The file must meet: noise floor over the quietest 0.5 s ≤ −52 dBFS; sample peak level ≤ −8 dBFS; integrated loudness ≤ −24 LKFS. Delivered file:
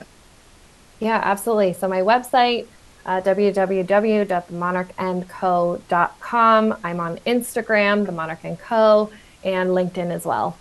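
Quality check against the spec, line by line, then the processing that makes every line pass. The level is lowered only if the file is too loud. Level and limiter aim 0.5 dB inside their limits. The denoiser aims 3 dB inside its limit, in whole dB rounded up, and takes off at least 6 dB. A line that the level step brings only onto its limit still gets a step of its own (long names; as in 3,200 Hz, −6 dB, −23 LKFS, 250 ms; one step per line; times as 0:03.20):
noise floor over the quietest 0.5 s −49 dBFS: out of spec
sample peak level −3.0 dBFS: out of spec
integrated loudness −20.0 LKFS: out of spec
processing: level −4.5 dB
brickwall limiter −8.5 dBFS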